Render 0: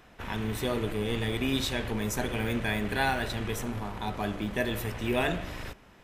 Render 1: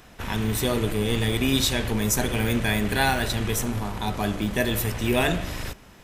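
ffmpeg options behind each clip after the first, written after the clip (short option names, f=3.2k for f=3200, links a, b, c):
-af "bass=f=250:g=3,treble=f=4k:g=8,volume=4.5dB"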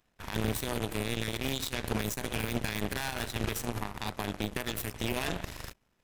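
-af "alimiter=limit=-19dB:level=0:latency=1:release=134,aeval=exprs='0.112*(cos(1*acos(clip(val(0)/0.112,-1,1)))-cos(1*PI/2))+0.0355*(cos(3*acos(clip(val(0)/0.112,-1,1)))-cos(3*PI/2))+0.00316*(cos(6*acos(clip(val(0)/0.112,-1,1)))-cos(6*PI/2))':c=same"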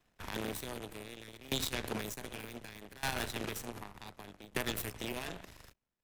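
-filter_complex "[0:a]acrossover=split=150|1200[a][b][c];[a]aeval=exprs='0.0126*(abs(mod(val(0)/0.0126+3,4)-2)-1)':c=same[d];[d][b][c]amix=inputs=3:normalize=0,aeval=exprs='val(0)*pow(10,-20*if(lt(mod(0.66*n/s,1),2*abs(0.66)/1000),1-mod(0.66*n/s,1)/(2*abs(0.66)/1000),(mod(0.66*n/s,1)-2*abs(0.66)/1000)/(1-2*abs(0.66)/1000))/20)':c=same,volume=1dB"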